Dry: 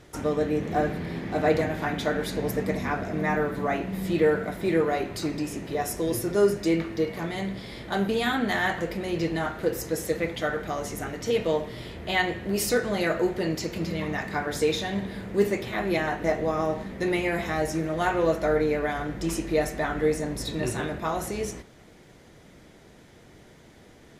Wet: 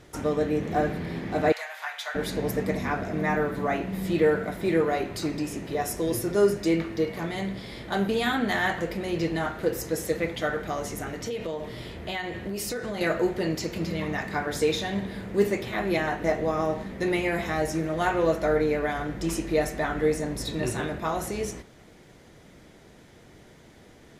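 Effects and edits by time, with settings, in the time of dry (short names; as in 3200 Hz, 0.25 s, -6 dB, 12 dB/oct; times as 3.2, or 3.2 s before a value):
1.52–2.15 Bessel high-pass 1200 Hz, order 8
10.87–13.01 compressor, threshold -28 dBFS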